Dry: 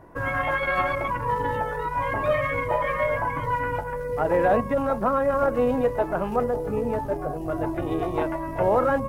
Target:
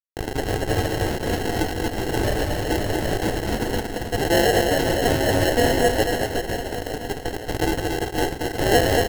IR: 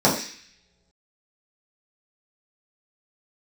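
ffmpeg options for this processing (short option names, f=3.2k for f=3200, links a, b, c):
-filter_complex "[0:a]aphaser=in_gain=1:out_gain=1:delay=4.6:decay=0.28:speed=0.91:type=sinusoidal,asettb=1/sr,asplit=3[a][b][c];[a]atrim=end=6.144[d];[b]atrim=start=6.14:end=7.2,asetpts=PTS-STARTPTS,afade=t=in:d=0.004:c=qsin,afade=t=out:st=1.056:d=0.004:c=qsin,acompressor=threshold=-25dB:ratio=16[e];[c]atrim=start=7.196[f];[d][e]acrossfade=d=0.004:c1=hsin:c2=qsin[g];[g][f]acrossfade=d=0.004:c1=qsin:c2=hsin,equalizer=f=3.7k:w=0.56:g=-8,acrusher=bits=3:mix=0:aa=0.000001,asuperstop=centerf=1900:order=12:qfactor=4.3,aecho=1:1:2.5:0.6,asettb=1/sr,asplit=3[h][i][j];[h]atrim=end=7.734[k];[i]atrim=start=7.73:end=8.2,asetpts=PTS-STARTPTS,afade=t=in:d=0.004:c=qsin,afade=t=out:st=0.466:d=0.004:c=qsin,highpass=f=650:p=1[l];[j]atrim=start=8.196[m];[k][l]acrossfade=d=0.004:c1=hsin:c2=qsin[n];[n][m]acrossfade=d=0.004:c1=qsin:c2=hsin,acrusher=samples=37:mix=1:aa=0.000001,aecho=1:1:230|529|917.7|1423|2080:0.631|0.398|0.251|0.158|0.1"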